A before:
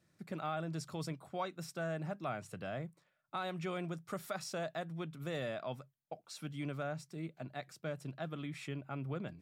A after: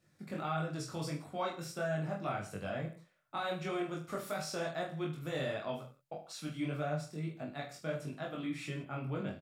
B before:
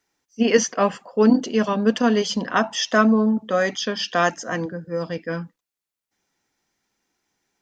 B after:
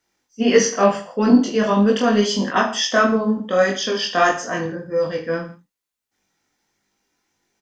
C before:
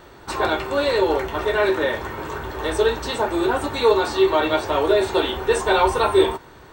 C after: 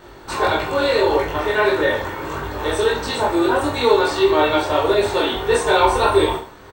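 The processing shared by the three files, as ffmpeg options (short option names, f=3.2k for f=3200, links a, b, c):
-af "flanger=delay=19.5:depth=4.6:speed=1.6,acontrast=23,aecho=1:1:20|45|76.25|115.3|164.1:0.631|0.398|0.251|0.158|0.1,volume=-1dB"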